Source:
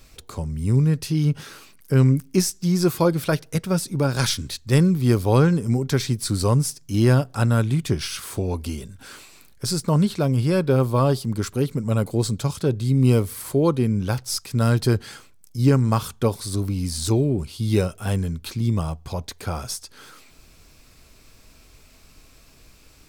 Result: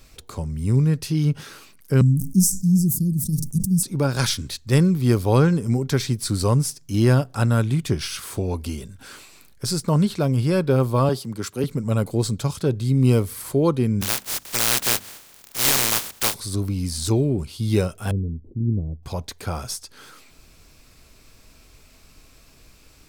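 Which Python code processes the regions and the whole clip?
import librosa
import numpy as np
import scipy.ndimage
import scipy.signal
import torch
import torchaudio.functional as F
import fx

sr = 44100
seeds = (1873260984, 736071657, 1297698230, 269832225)

y = fx.chain(x, sr, fx.cheby2_bandstop(low_hz=730.0, high_hz=2300.0, order=4, stop_db=70),
    fx.peak_eq(hz=200.0, db=7.0, octaves=0.34),
    fx.sustainer(db_per_s=81.0), at=(2.01, 3.83))
y = fx.chain(y, sr, fx.highpass(hz=210.0, slope=6),
    fx.band_widen(depth_pct=40), at=(11.09, 11.64))
y = fx.spec_flatten(y, sr, power=0.12, at=(14.01, 16.33), fade=0.02)
y = fx.hum_notches(y, sr, base_hz=50, count=6, at=(14.01, 16.33), fade=0.02)
y = fx.overload_stage(y, sr, gain_db=12.5, at=(14.01, 16.33), fade=0.02)
y = fx.chain(y, sr, fx.cheby2_lowpass(hz=1400.0, order=4, stop_db=60),
    fx.dynamic_eq(hz=170.0, q=3.9, threshold_db=-42.0, ratio=4.0, max_db=-4), at=(18.11, 19.03))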